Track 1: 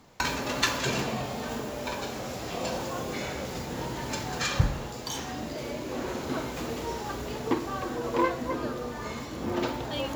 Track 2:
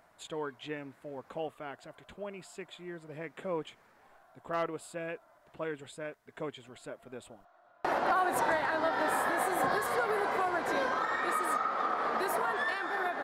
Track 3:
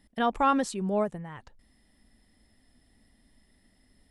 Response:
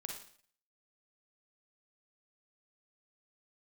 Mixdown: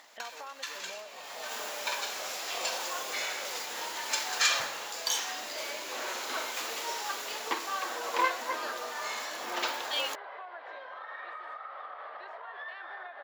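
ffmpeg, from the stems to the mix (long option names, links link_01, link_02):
-filter_complex "[0:a]highpass=480,volume=-2.5dB[link_01];[1:a]volume=-6dB[link_02];[2:a]acompressor=mode=upward:threshold=-31dB:ratio=2.5,volume=-11.5dB,asplit=2[link_03][link_04];[link_04]apad=whole_len=447736[link_05];[link_01][link_05]sidechaincompress=threshold=-53dB:ratio=12:attack=22:release=325[link_06];[link_02][link_03]amix=inputs=2:normalize=0,highpass=490,equalizer=frequency=590:width_type=q:width=4:gain=8,equalizer=frequency=1400:width_type=q:width=4:gain=-4,equalizer=frequency=2400:width_type=q:width=4:gain=-5,lowpass=frequency=3300:width=0.5412,lowpass=frequency=3300:width=1.3066,acompressor=threshold=-44dB:ratio=5,volume=0dB[link_07];[link_06][link_07]amix=inputs=2:normalize=0,tiltshelf=frequency=670:gain=-9"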